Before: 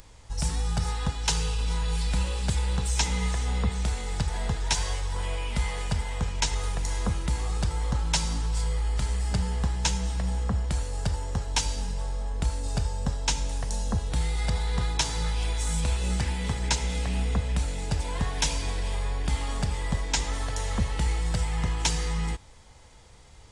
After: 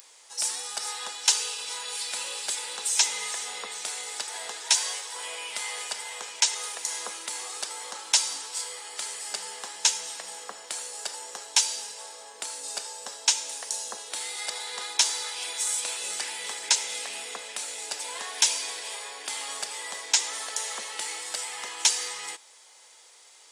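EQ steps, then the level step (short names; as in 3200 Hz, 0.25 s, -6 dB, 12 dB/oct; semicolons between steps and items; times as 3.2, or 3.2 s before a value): HPF 350 Hz 24 dB/oct; tilt +3.5 dB/oct; -2.0 dB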